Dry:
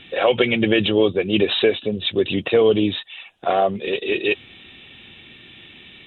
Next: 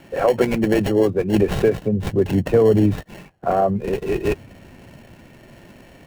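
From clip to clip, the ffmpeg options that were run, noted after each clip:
-filter_complex "[0:a]highpass=95,acrossover=split=140|1900[a][b][c];[a]dynaudnorm=f=240:g=11:m=15.5dB[d];[c]acrusher=samples=36:mix=1:aa=0.000001[e];[d][b][e]amix=inputs=3:normalize=0"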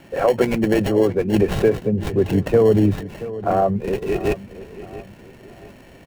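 -filter_complex "[0:a]asplit=2[a][b];[b]adelay=679,lowpass=f=3.3k:p=1,volume=-15dB,asplit=2[c][d];[d]adelay=679,lowpass=f=3.3k:p=1,volume=0.38,asplit=2[e][f];[f]adelay=679,lowpass=f=3.3k:p=1,volume=0.38[g];[a][c][e][g]amix=inputs=4:normalize=0"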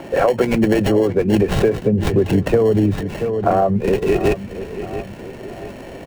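-filter_complex "[0:a]acrossover=split=340|770|4200[a][b][c][d];[b]acompressor=mode=upward:threshold=-36dB:ratio=2.5[e];[a][e][c][d]amix=inputs=4:normalize=0,equalizer=f=12k:w=5.9:g=-7.5,acompressor=threshold=-20dB:ratio=6,volume=8dB"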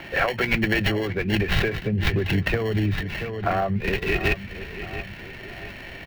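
-af "equalizer=f=125:t=o:w=1:g=-3,equalizer=f=250:t=o:w=1:g=-8,equalizer=f=500:t=o:w=1:g=-11,equalizer=f=1k:t=o:w=1:g=-5,equalizer=f=2k:t=o:w=1:g=8,equalizer=f=4k:t=o:w=1:g=4,equalizer=f=8k:t=o:w=1:g=-11"

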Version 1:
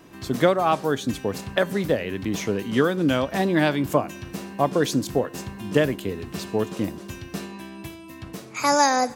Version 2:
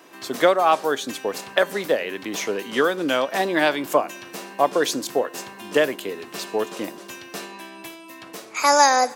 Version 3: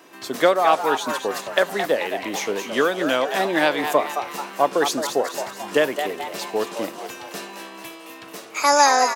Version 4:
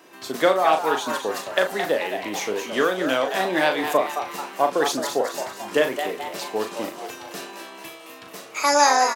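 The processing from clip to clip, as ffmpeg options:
-af "highpass=440,volume=4dB"
-filter_complex "[0:a]asplit=7[a][b][c][d][e][f][g];[b]adelay=218,afreqshift=140,volume=-8dB[h];[c]adelay=436,afreqshift=280,volume=-14dB[i];[d]adelay=654,afreqshift=420,volume=-20dB[j];[e]adelay=872,afreqshift=560,volume=-26.1dB[k];[f]adelay=1090,afreqshift=700,volume=-32.1dB[l];[g]adelay=1308,afreqshift=840,volume=-38.1dB[m];[a][h][i][j][k][l][m]amix=inputs=7:normalize=0"
-filter_complex "[0:a]asplit=2[a][b];[b]adelay=38,volume=-7dB[c];[a][c]amix=inputs=2:normalize=0,volume=-2dB"

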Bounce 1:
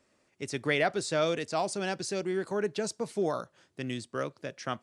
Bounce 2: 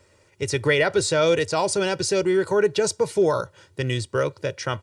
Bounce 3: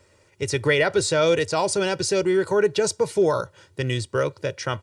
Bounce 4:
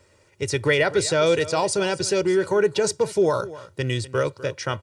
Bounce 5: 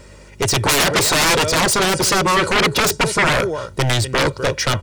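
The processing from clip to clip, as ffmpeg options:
-filter_complex "[0:a]asplit=2[a][b];[b]alimiter=limit=-23.5dB:level=0:latency=1,volume=2.5dB[c];[a][c]amix=inputs=2:normalize=0,equalizer=f=90:w=2:g=13,aecho=1:1:2.1:0.63,volume=2dB"
-af anull
-af "aecho=1:1:249:0.141"
-af "aeval=exprs='0.473*(cos(1*acos(clip(val(0)/0.473,-1,1)))-cos(1*PI/2))+0.15*(cos(7*acos(clip(val(0)/0.473,-1,1)))-cos(7*PI/2))':c=same,aeval=exprs='val(0)+0.00178*(sin(2*PI*50*n/s)+sin(2*PI*2*50*n/s)/2+sin(2*PI*3*50*n/s)/3+sin(2*PI*4*50*n/s)/4+sin(2*PI*5*50*n/s)/5)':c=same,aeval=exprs='0.473*sin(PI/2*3.55*val(0)/0.473)':c=same,volume=-3dB"

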